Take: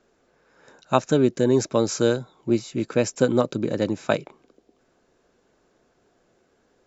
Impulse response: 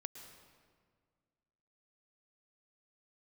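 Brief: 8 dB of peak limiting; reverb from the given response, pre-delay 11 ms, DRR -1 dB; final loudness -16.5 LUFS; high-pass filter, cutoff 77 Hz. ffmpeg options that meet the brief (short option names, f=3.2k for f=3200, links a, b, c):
-filter_complex "[0:a]highpass=77,alimiter=limit=-11dB:level=0:latency=1,asplit=2[a][b];[1:a]atrim=start_sample=2205,adelay=11[c];[b][c]afir=irnorm=-1:irlink=0,volume=4.5dB[d];[a][d]amix=inputs=2:normalize=0,volume=5.5dB"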